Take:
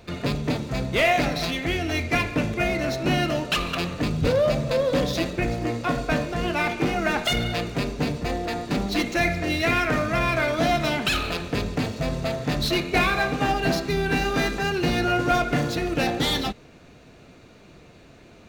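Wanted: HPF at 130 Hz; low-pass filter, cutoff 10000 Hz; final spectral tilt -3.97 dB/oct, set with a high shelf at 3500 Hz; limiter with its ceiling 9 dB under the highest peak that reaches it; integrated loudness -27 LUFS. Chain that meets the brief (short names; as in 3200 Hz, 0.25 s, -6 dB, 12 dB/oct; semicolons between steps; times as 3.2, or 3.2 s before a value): HPF 130 Hz; LPF 10000 Hz; high shelf 3500 Hz -5.5 dB; gain +1.5 dB; limiter -18 dBFS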